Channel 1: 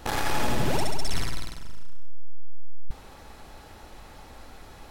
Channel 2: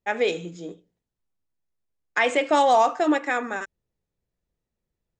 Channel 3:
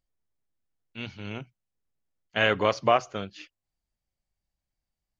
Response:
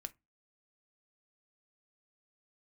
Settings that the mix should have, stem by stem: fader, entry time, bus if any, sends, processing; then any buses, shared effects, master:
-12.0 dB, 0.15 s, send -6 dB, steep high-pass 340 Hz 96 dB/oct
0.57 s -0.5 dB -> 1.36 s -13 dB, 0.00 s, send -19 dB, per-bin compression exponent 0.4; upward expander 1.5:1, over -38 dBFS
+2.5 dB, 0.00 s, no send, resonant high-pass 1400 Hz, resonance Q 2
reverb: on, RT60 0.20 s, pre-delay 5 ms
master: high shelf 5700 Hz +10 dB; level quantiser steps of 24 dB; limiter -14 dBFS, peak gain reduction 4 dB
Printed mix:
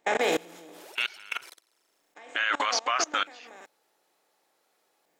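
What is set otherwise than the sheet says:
stem 3 +2.5 dB -> +13.5 dB; reverb return -9.0 dB

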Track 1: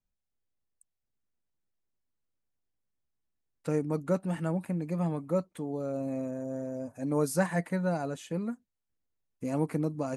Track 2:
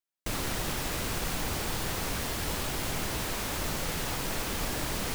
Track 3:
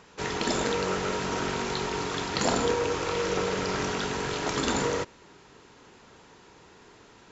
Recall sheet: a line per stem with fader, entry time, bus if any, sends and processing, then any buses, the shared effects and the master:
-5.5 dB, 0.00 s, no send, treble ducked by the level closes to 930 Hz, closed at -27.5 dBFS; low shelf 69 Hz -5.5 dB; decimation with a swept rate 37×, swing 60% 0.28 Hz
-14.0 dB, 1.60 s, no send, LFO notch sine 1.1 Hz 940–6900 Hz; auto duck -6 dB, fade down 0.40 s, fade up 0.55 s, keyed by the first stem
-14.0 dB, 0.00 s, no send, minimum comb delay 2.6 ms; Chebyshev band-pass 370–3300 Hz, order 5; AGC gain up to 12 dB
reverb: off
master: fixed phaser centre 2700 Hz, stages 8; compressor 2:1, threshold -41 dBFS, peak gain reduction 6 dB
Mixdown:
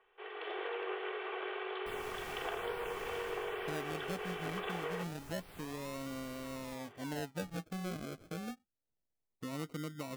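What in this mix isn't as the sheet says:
stem 1: missing low shelf 69 Hz -5.5 dB; master: missing fixed phaser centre 2700 Hz, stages 8

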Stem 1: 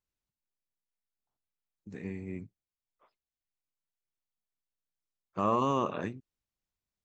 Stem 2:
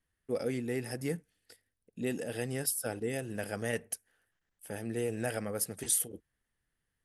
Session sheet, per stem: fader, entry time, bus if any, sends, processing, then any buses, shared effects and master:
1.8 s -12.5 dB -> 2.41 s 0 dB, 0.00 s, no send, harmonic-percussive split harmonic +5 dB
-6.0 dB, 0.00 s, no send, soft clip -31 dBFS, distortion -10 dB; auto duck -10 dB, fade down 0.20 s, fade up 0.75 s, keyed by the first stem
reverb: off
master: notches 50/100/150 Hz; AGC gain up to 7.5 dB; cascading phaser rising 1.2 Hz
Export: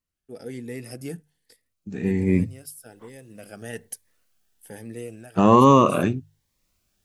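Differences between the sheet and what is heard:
stem 1 -12.5 dB -> -2.0 dB; stem 2: missing soft clip -31 dBFS, distortion -10 dB

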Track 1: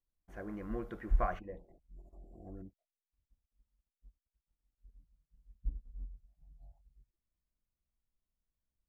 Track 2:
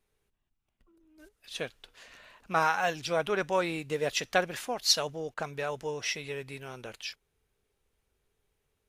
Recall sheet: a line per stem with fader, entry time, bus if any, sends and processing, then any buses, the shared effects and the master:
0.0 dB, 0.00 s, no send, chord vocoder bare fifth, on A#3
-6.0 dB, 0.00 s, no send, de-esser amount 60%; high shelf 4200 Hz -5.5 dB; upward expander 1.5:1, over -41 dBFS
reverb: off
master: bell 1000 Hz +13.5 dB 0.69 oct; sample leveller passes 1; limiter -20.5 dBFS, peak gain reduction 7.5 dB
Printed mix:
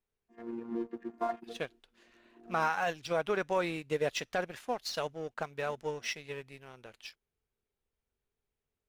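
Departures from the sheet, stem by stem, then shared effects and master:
stem 2 -6.0 dB -> +0.5 dB; master: missing bell 1000 Hz +13.5 dB 0.69 oct

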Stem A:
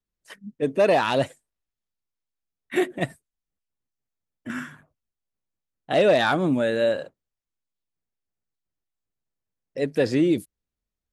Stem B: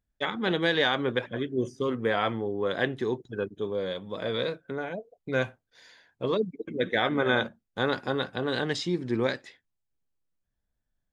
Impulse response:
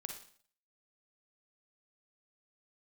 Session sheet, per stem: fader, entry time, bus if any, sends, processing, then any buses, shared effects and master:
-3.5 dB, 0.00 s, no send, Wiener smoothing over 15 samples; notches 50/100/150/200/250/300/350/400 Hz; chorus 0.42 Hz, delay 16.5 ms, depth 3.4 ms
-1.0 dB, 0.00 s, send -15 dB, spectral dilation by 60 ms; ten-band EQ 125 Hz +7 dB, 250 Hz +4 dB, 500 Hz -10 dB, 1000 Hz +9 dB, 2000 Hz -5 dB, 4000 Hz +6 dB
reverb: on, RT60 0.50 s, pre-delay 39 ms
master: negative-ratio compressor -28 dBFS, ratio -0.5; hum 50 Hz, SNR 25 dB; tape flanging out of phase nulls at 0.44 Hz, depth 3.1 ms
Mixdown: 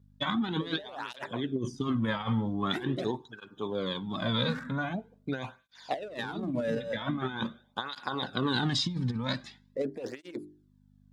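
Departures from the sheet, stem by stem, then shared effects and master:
stem A: missing chorus 0.42 Hz, delay 16.5 ms, depth 3.4 ms; stem B: missing spectral dilation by 60 ms

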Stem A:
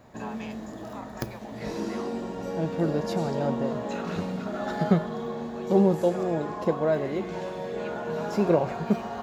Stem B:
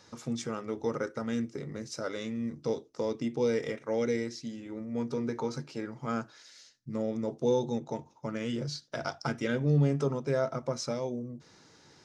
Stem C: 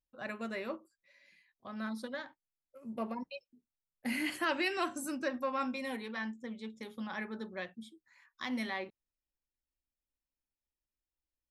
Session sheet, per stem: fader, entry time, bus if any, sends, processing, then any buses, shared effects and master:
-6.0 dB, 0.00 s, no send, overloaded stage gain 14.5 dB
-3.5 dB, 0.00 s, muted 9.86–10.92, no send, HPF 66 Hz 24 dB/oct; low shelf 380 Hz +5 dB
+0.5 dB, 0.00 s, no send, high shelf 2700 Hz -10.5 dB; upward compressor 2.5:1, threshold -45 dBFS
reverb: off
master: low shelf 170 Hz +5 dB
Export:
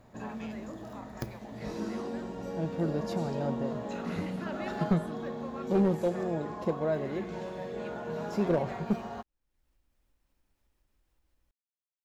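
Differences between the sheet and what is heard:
stem B: muted; stem C +0.5 dB -> -8.5 dB

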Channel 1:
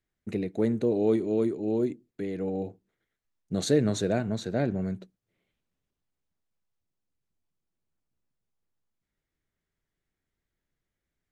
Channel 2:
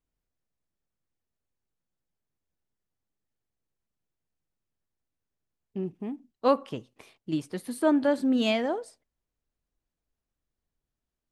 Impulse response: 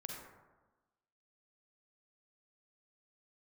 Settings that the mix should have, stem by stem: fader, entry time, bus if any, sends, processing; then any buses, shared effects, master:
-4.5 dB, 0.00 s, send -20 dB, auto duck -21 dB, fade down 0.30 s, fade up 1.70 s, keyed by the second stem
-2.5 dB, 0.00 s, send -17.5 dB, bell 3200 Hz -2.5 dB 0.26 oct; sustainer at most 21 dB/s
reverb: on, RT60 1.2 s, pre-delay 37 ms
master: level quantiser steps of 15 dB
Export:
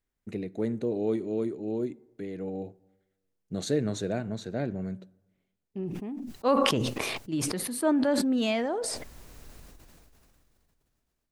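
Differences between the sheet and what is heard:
stem 2: send off; master: missing level quantiser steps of 15 dB

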